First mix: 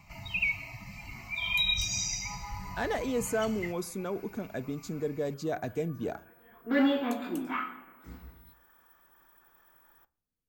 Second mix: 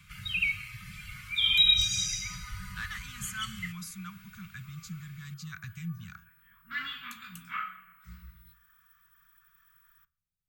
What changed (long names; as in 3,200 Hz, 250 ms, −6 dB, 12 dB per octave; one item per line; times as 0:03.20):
first sound: remove phaser with its sweep stopped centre 2,300 Hz, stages 8
master: add Chebyshev band-stop filter 180–1,200 Hz, order 4